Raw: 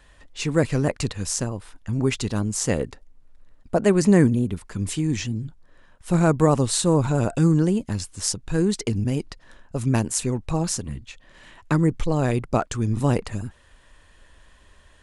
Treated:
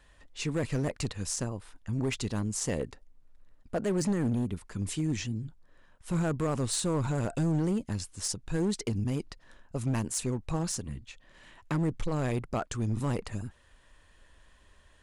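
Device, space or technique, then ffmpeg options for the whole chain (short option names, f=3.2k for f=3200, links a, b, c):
limiter into clipper: -af "alimiter=limit=-11.5dB:level=0:latency=1:release=26,asoftclip=type=hard:threshold=-17dB,volume=-6.5dB"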